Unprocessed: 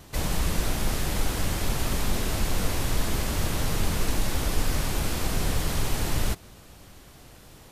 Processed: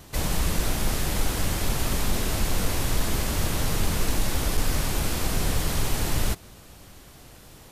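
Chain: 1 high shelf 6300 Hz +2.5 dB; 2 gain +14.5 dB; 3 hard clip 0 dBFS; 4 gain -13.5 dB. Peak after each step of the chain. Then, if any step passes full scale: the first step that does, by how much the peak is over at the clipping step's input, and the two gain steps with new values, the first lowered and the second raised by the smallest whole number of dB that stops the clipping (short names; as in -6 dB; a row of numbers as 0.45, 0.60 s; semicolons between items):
-10.5, +4.0, 0.0, -13.5 dBFS; step 2, 4.0 dB; step 2 +10.5 dB, step 4 -9.5 dB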